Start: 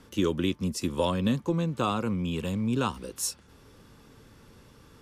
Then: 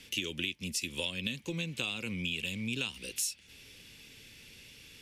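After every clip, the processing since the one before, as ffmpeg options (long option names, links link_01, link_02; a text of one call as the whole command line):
ffmpeg -i in.wav -af "highshelf=frequency=1700:width_type=q:width=3:gain=13,acompressor=threshold=-25dB:ratio=6,volume=-6.5dB" out.wav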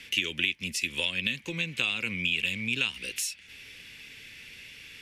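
ffmpeg -i in.wav -af "equalizer=frequency=2000:width_type=o:width=1.4:gain=11.5" out.wav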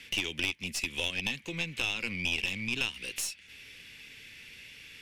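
ffmpeg -i in.wav -af "aeval=exprs='(tanh(10*val(0)+0.55)-tanh(0.55))/10':channel_layout=same" out.wav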